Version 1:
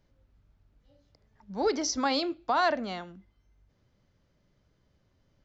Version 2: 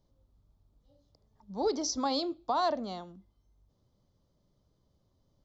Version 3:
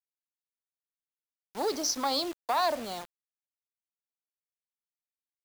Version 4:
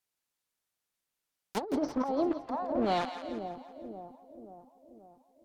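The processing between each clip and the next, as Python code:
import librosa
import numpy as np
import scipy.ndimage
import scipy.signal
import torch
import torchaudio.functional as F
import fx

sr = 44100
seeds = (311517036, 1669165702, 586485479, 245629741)

y1 = fx.band_shelf(x, sr, hz=2000.0, db=-12.0, octaves=1.2)
y1 = F.gain(torch.from_numpy(y1), -2.5).numpy()
y2 = fx.tube_stage(y1, sr, drive_db=24.0, bias=0.35)
y2 = fx.highpass(y2, sr, hz=580.0, slope=6)
y2 = fx.quant_dither(y2, sr, seeds[0], bits=8, dither='none')
y2 = F.gain(torch.from_numpy(y2), 6.0).numpy()
y3 = fx.env_lowpass_down(y2, sr, base_hz=690.0, full_db=-27.0)
y3 = fx.over_compress(y3, sr, threshold_db=-36.0, ratio=-0.5)
y3 = fx.echo_split(y3, sr, split_hz=790.0, low_ms=533, high_ms=168, feedback_pct=52, wet_db=-9.0)
y3 = F.gain(torch.from_numpy(y3), 6.5).numpy()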